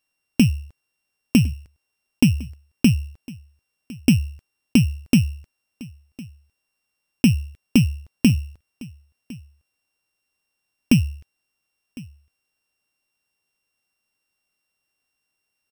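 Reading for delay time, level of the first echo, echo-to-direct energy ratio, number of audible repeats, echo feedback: 1056 ms, -21.5 dB, -21.5 dB, 1, no regular repeats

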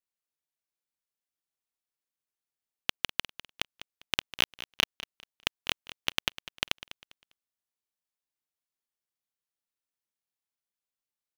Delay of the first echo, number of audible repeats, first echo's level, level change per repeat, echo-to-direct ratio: 200 ms, 2, -15.5 dB, -11.0 dB, -15.0 dB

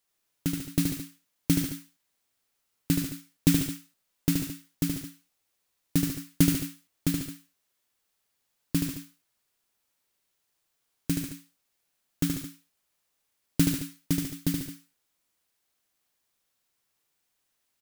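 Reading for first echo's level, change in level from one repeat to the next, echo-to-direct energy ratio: -4.5 dB, no regular repeats, -2.0 dB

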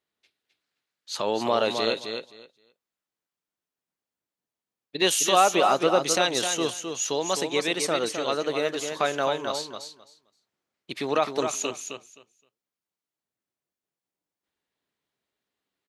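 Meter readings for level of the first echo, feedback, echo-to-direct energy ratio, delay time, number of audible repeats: -6.5 dB, 17%, -6.5 dB, 261 ms, 2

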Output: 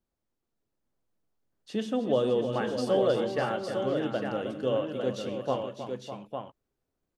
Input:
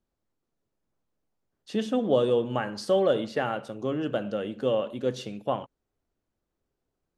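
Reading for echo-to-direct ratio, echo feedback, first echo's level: -3.0 dB, no regular repeats, -20.0 dB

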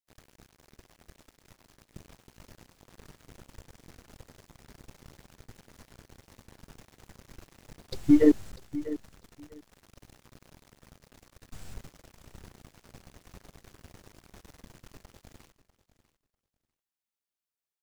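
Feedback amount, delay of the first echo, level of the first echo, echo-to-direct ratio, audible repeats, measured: 16%, 646 ms, -15.5 dB, -15.5 dB, 2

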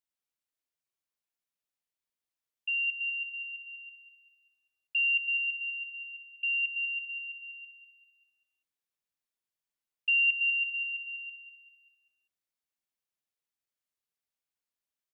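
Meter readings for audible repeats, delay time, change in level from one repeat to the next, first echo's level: 4, 196 ms, -7.0 dB, -10.0 dB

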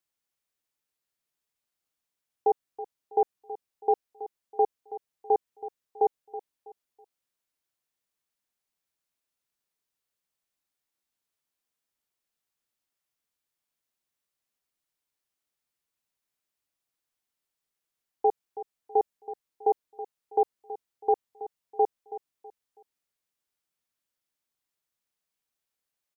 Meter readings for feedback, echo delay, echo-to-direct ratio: 32%, 325 ms, -14.0 dB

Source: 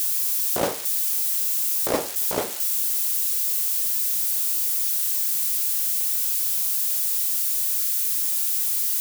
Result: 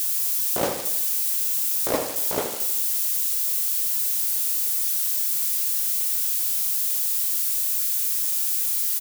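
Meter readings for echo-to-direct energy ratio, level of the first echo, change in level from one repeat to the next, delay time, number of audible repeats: -7.5 dB, -9.0 dB, -5.0 dB, 79 ms, 6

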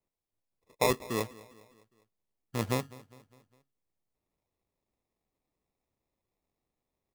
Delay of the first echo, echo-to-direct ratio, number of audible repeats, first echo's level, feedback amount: 203 ms, -19.0 dB, 3, -20.5 dB, 51%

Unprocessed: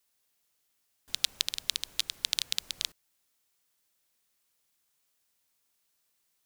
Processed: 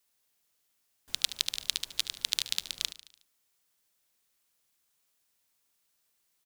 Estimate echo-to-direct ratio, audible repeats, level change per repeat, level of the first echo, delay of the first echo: -13.0 dB, 4, -5.5 dB, -14.5 dB, 73 ms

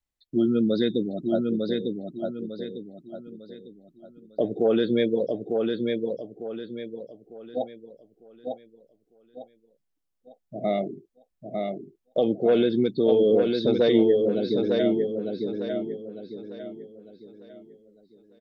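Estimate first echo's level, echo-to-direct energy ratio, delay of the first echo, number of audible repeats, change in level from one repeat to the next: -4.0 dB, -3.5 dB, 901 ms, 4, -9.0 dB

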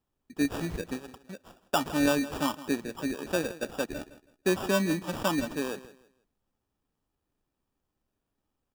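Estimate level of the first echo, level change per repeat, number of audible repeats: -16.5 dB, -11.5 dB, 2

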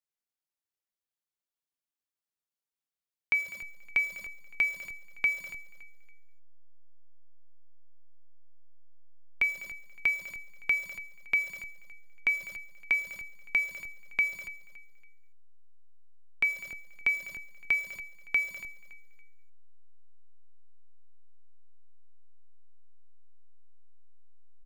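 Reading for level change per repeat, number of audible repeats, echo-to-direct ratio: -10.0 dB, 2, -15.5 dB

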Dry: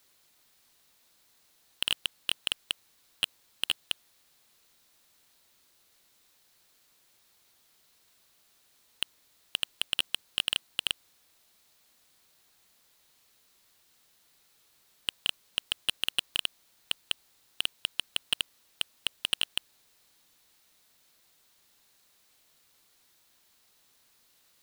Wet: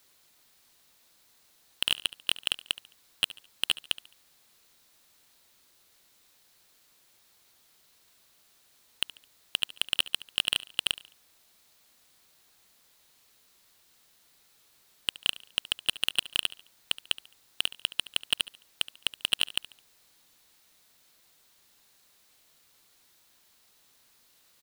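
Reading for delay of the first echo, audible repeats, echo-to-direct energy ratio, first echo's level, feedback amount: 71 ms, 3, -17.5 dB, -18.0 dB, 38%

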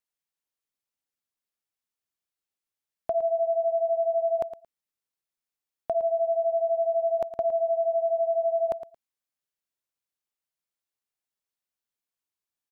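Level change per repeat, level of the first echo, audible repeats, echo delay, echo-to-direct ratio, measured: -16.0 dB, -12.0 dB, 2, 112 ms, -12.0 dB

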